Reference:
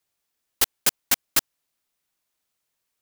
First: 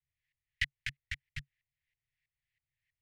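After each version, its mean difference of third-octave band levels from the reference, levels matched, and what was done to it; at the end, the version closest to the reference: 19.5 dB: LFO low-pass saw up 3.1 Hz 730–1800 Hz; compression, threshold -29 dBFS, peak gain reduction 8.5 dB; Chebyshev band-stop 140–1900 Hz, order 5; trim +5.5 dB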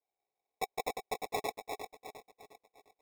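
9.5 dB: backward echo that repeats 177 ms, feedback 66%, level -1 dB; cascade formant filter a; sample-and-hold 29×; trim +7 dB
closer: second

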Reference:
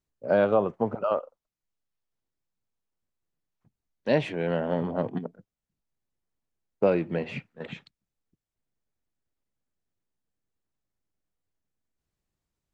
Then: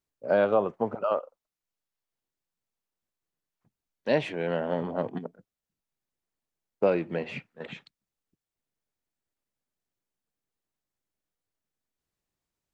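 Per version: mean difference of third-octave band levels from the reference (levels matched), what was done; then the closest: 1.0 dB: bass shelf 190 Hz -8 dB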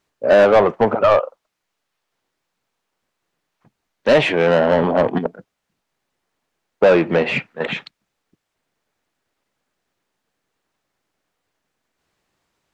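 4.0 dB: overdrive pedal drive 21 dB, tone 2.7 kHz, clips at -9.5 dBFS; trim +6 dB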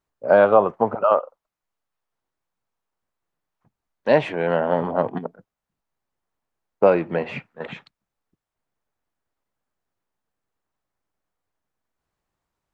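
2.5 dB: peaking EQ 1 kHz +11.5 dB 2.3 oct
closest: first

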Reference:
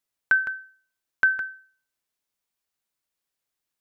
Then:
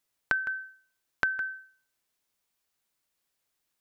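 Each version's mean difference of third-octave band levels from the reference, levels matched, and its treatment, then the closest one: 2.5 dB: compression, threshold -30 dBFS, peak gain reduction 13.5 dB; trim +4 dB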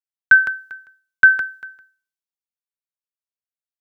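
1.5 dB: on a send: delay 397 ms -16.5 dB; on the sum: three bands expanded up and down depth 70%; trim +5 dB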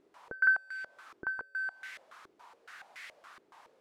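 4.5 dB: zero-crossing glitches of -20 dBFS; step-sequenced low-pass 7.1 Hz 370–2000 Hz; trim -6.5 dB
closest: second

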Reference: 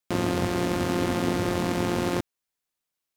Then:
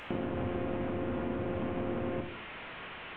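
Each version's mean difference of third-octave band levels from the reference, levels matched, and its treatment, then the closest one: 10.0 dB: one-bit delta coder 16 kbps, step -37.5 dBFS; compression 10:1, threshold -29 dBFS, peak gain reduction 7.5 dB; short-mantissa float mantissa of 8-bit; plate-style reverb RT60 0.85 s, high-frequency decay 0.9×, pre-delay 0 ms, DRR 3.5 dB; trim -1.5 dB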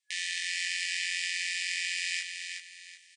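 29.5 dB: FFT band-pass 1.7–9.6 kHz; reverse; upward compressor, threshold -50 dBFS; reverse; doubling 21 ms -3 dB; feedback delay 374 ms, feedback 32%, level -6 dB; trim +2.5 dB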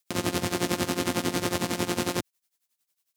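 4.0 dB: high-pass 90 Hz; peak limiter -17.5 dBFS, peak gain reduction 4.5 dB; tremolo 11 Hz, depth 82%; treble shelf 2.7 kHz +10.5 dB; trim +2.5 dB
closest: third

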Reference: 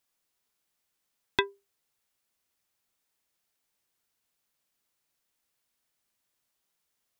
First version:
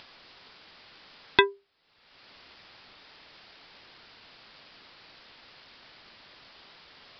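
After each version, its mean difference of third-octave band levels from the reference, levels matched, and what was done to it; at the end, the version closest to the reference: 2.5 dB: bass shelf 230 Hz -4 dB; upward compressor, threshold -40 dBFS; resampled via 11.025 kHz; loudness maximiser +11.5 dB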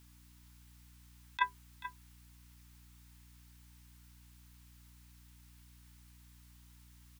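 12.5 dB: elliptic high-pass 850 Hz, stop band 40 dB; hum 60 Hz, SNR 28 dB; compressor with a negative ratio -34 dBFS, ratio -0.5; delay 435 ms -13 dB; trim +6.5 dB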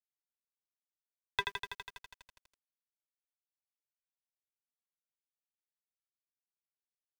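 16.0 dB: Chebyshev band-stop 160–430 Hz, order 4; crossover distortion -41 dBFS; tremolo saw up 0.91 Hz, depth 35%; bit-crushed delay 82 ms, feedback 80%, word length 9-bit, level -5.5 dB; trim -2 dB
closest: first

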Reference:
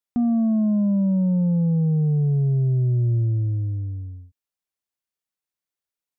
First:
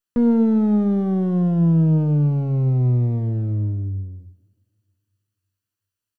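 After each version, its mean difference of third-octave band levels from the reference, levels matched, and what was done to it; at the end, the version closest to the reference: 6.5 dB: comb filter that takes the minimum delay 0.69 ms; in parallel at -5 dB: hard clipper -26 dBFS, distortion -9 dB; on the sum: doubling 13 ms -11.5 dB; two-slope reverb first 0.85 s, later 2.8 s, from -21 dB, DRR 13 dB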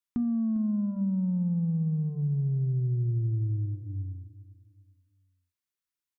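2.0 dB: high-order bell 590 Hz -11.5 dB 1.1 oct; hum notches 50/100/150/200/250/300 Hz; compression, threshold -24 dBFS, peak gain reduction 6.5 dB; feedback delay 402 ms, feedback 35%, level -16 dB; trim -2 dB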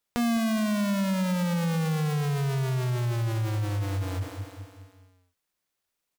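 20.0 dB: square wave that keeps the level; on a send: feedback delay 205 ms, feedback 53%, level -12.5 dB; on the sum: compression 12:1, threshold -30 dBFS, peak gain reduction 14.5 dB; transformer saturation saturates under 300 Hz; trim +5.5 dB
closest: second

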